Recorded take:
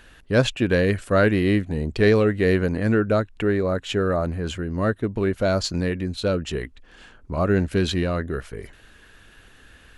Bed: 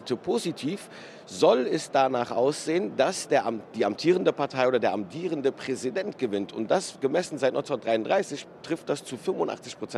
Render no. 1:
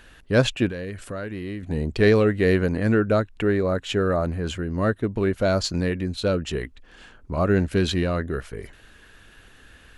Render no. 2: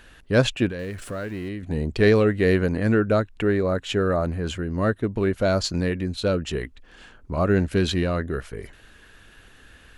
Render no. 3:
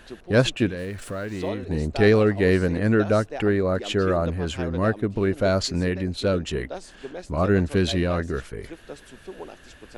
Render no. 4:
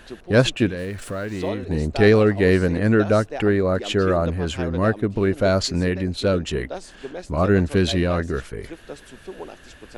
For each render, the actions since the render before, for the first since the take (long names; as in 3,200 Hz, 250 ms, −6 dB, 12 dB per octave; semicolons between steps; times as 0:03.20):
0:00.68–0:01.63: downward compressor 4 to 1, threshold −31 dBFS
0:00.79–0:01.49: converter with a step at zero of −43 dBFS
mix in bed −11.5 dB
level +2.5 dB